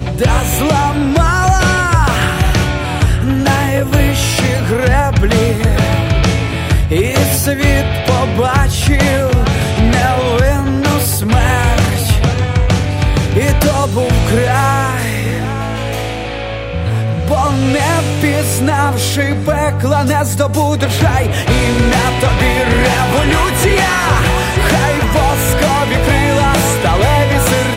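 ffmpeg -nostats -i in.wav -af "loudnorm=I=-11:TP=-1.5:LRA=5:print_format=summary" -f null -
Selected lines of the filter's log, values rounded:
Input Integrated:    -12.9 LUFS
Input True Peak:      -0.8 dBTP
Input LRA:             1.9 LU
Input Threshold:     -22.9 LUFS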